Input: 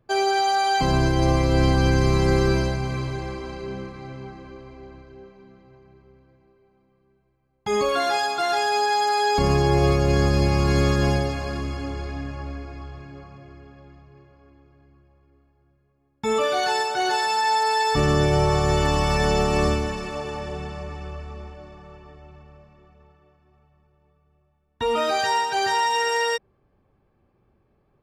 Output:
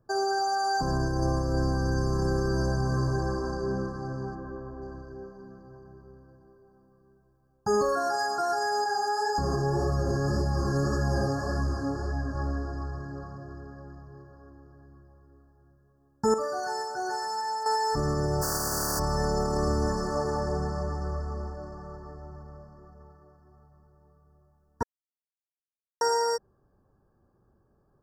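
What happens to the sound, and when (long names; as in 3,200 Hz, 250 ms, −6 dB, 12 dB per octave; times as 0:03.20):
0:04.35–0:04.82: flat-topped bell 6,500 Hz −12 dB
0:08.84–0:12.35: chorus effect 1.8 Hz, delay 15.5 ms, depth 6.1 ms
0:16.34–0:17.66: clip gain −10.5 dB
0:18.41–0:18.98: compressing power law on the bin magnitudes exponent 0.23
0:24.83–0:26.01: silence
whole clip: Chebyshev band-stop filter 1,700–4,600 Hz, order 5; brickwall limiter −17.5 dBFS; speech leveller within 3 dB 0.5 s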